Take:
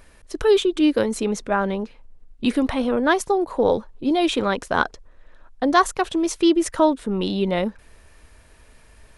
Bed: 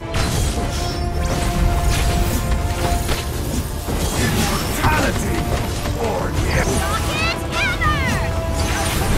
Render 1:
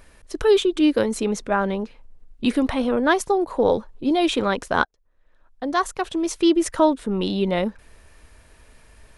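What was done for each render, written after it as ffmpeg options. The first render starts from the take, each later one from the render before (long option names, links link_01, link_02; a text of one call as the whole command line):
ffmpeg -i in.wav -filter_complex "[0:a]asplit=2[link_01][link_02];[link_01]atrim=end=4.85,asetpts=PTS-STARTPTS,afade=type=out:start_time=4.846:duration=0.004:curve=hsin[link_03];[link_02]atrim=start=4.85,asetpts=PTS-STARTPTS,afade=type=in:duration=1.72[link_04];[link_03][link_04]concat=n=2:v=0:a=1" out.wav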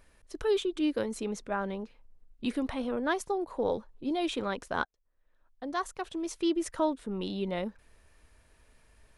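ffmpeg -i in.wav -af "volume=-11dB" out.wav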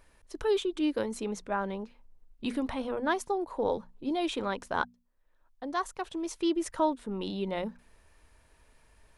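ffmpeg -i in.wav -af "equalizer=frequency=920:width=3.8:gain=4,bandreject=frequency=60:width_type=h:width=6,bandreject=frequency=120:width_type=h:width=6,bandreject=frequency=180:width_type=h:width=6,bandreject=frequency=240:width_type=h:width=6" out.wav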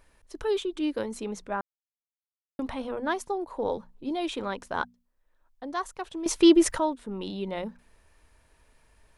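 ffmpeg -i in.wav -filter_complex "[0:a]asplit=5[link_01][link_02][link_03][link_04][link_05];[link_01]atrim=end=1.61,asetpts=PTS-STARTPTS,afade=type=out:start_time=1.606:duration=0.004:curve=hsin[link_06];[link_02]atrim=start=1.61:end=2.59,asetpts=PTS-STARTPTS,volume=0[link_07];[link_03]atrim=start=2.59:end=6.262,asetpts=PTS-STARTPTS,afade=type=in:duration=0.004:curve=hsin[link_08];[link_04]atrim=start=6.258:end=6.782,asetpts=PTS-STARTPTS,volume=11.5dB[link_09];[link_05]atrim=start=6.778[link_10];[link_06][link_07][link_08]concat=n=3:v=0:a=1[link_11];[link_11][link_09]acrossfade=duration=0.004:curve1=hsin:curve2=hsin[link_12];[link_12][link_10]acrossfade=duration=0.004:curve1=hsin:curve2=hsin" out.wav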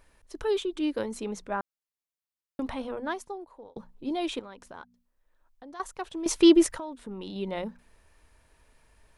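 ffmpeg -i in.wav -filter_complex "[0:a]asettb=1/sr,asplit=3[link_01][link_02][link_03];[link_01]atrim=end=4.394[link_04];[link_02]atrim=start=4.39:end=5.8,asetpts=PTS-STARTPTS,afade=type=in:duration=0.004:curve=qsin,afade=type=out:start_time=1.406:duration=0.004:curve=qsin,acompressor=threshold=-47dB:ratio=2.5:attack=3.2:release=140:knee=1:detection=peak[link_05];[link_03]atrim=start=5.796[link_06];[link_04][link_05]acrossfade=duration=0.004:curve1=hsin:curve2=qsin[link_07];[link_07][link_06]acrossfade=duration=0.004:curve1=qsin:curve2=hsin,asettb=1/sr,asplit=3[link_08][link_09][link_10];[link_08]atrim=end=6.664[link_11];[link_09]atrim=start=6.66:end=7.36,asetpts=PTS-STARTPTS,afade=type=in:duration=0.004:curve=qsin,afade=type=out:start_time=0.696:duration=0.004:curve=qsin,acompressor=threshold=-34dB:ratio=5:attack=3.2:release=140:knee=1:detection=peak[link_12];[link_10]atrim=start=7.356[link_13];[link_11][link_12]acrossfade=duration=0.004:curve1=hsin:curve2=qsin[link_14];[link_14][link_13]acrossfade=duration=0.004:curve1=qsin:curve2=hsin,asplit=2[link_15][link_16];[link_15]atrim=end=3.76,asetpts=PTS-STARTPTS,afade=type=out:start_time=2.73:duration=1.03[link_17];[link_16]atrim=start=3.76,asetpts=PTS-STARTPTS,afade=type=in:duration=0.004:curve=hsin[link_18];[link_17][link_18]concat=n=2:v=0:a=1" out.wav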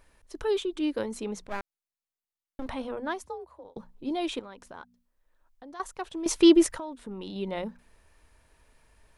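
ffmpeg -i in.wav -filter_complex "[0:a]asettb=1/sr,asplit=3[link_01][link_02][link_03];[link_01]atrim=end=1.444[link_04];[link_02]atrim=start=1.44:end=2.66,asetpts=PTS-STARTPTS,afade=type=in:duration=0.004:curve=qsin,afade=type=out:start_time=1.216:duration=0.004:curve=qsin,aeval=exprs='max(val(0),0)':channel_layout=same[link_05];[link_03]atrim=start=2.656[link_06];[link_04][link_05]acrossfade=duration=0.004:curve1=hsin:curve2=qsin[link_07];[link_07][link_06]acrossfade=duration=0.004:curve1=qsin:curve2=hsin,asplit=3[link_08][link_09][link_10];[link_08]afade=type=out:start_time=3.23:duration=0.02[link_11];[link_09]afreqshift=50,afade=type=in:start_time=3.23:duration=0.02,afade=type=out:start_time=3.63:duration=0.02[link_12];[link_10]afade=type=in:start_time=3.63:duration=0.02[link_13];[link_11][link_12][link_13]amix=inputs=3:normalize=0" out.wav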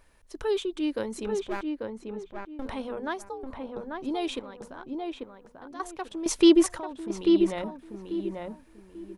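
ffmpeg -i in.wav -filter_complex "[0:a]asplit=2[link_01][link_02];[link_02]adelay=841,lowpass=frequency=1700:poles=1,volume=-3.5dB,asplit=2[link_03][link_04];[link_04]adelay=841,lowpass=frequency=1700:poles=1,volume=0.28,asplit=2[link_05][link_06];[link_06]adelay=841,lowpass=frequency=1700:poles=1,volume=0.28,asplit=2[link_07][link_08];[link_08]adelay=841,lowpass=frequency=1700:poles=1,volume=0.28[link_09];[link_01][link_03][link_05][link_07][link_09]amix=inputs=5:normalize=0" out.wav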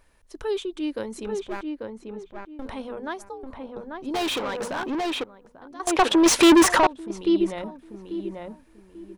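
ffmpeg -i in.wav -filter_complex "[0:a]asettb=1/sr,asplit=3[link_01][link_02][link_03];[link_01]atrim=end=4.144[link_04];[link_02]atrim=start=4.14:end=5.24,asetpts=PTS-STARTPTS,afade=type=in:duration=0.004:curve=qsin,afade=type=out:start_time=1.096:duration=0.004:curve=qsin,asplit=2[link_05][link_06];[link_06]highpass=frequency=720:poles=1,volume=30dB,asoftclip=type=tanh:threshold=-20dB[link_07];[link_05][link_07]amix=inputs=2:normalize=0,lowpass=frequency=5900:poles=1,volume=-6dB[link_08];[link_03]atrim=start=5.236[link_09];[link_04][link_08]acrossfade=duration=0.004:curve1=hsin:curve2=qsin[link_10];[link_10][link_09]acrossfade=duration=0.004:curve1=qsin:curve2=hsin,asettb=1/sr,asplit=3[link_11][link_12][link_13];[link_11]atrim=end=5.874[link_14];[link_12]atrim=start=5.87:end=6.87,asetpts=PTS-STARTPTS,afade=type=in:duration=0.004:curve=qsin,afade=type=out:start_time=0.996:duration=0.004:curve=qsin,asplit=2[link_15][link_16];[link_16]highpass=frequency=720:poles=1,volume=34dB,asoftclip=type=tanh:threshold=-7dB[link_17];[link_15][link_17]amix=inputs=2:normalize=0,lowpass=frequency=3600:poles=1,volume=-6dB[link_18];[link_13]atrim=start=6.866[link_19];[link_14][link_18]acrossfade=duration=0.004:curve1=hsin:curve2=qsin[link_20];[link_20][link_19]acrossfade=duration=0.004:curve1=qsin:curve2=hsin" out.wav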